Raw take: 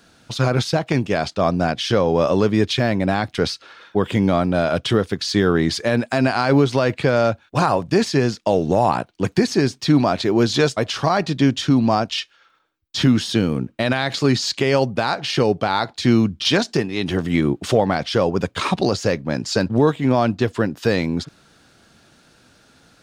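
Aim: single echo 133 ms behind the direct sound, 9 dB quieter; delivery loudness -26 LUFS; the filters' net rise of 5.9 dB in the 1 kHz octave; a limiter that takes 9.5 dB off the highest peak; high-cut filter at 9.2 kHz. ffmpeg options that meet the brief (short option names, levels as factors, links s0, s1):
-af "lowpass=9200,equalizer=f=1000:t=o:g=8,alimiter=limit=0.335:level=0:latency=1,aecho=1:1:133:0.355,volume=0.562"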